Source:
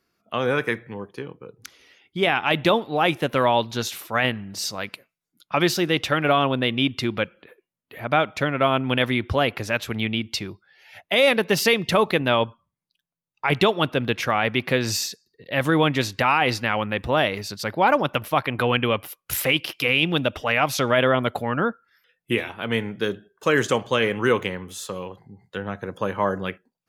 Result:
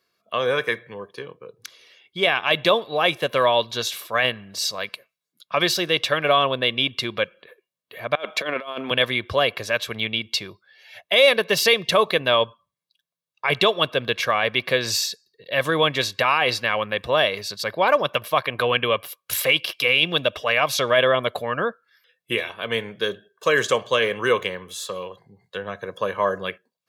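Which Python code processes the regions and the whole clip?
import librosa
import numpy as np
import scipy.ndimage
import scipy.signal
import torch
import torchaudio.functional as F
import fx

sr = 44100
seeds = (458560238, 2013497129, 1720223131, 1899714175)

y = fx.chain(x, sr, fx.highpass(hz=210.0, slope=24),
    fx.over_compress(threshold_db=-26.0, ratio=-0.5), at=(8.15, 8.91))
y = fx.highpass(y, sr, hz=290.0, slope=6)
y = fx.peak_eq(y, sr, hz=3800.0, db=5.5, octaves=0.59)
y = y + 0.5 * np.pad(y, (int(1.8 * sr / 1000.0), 0))[:len(y)]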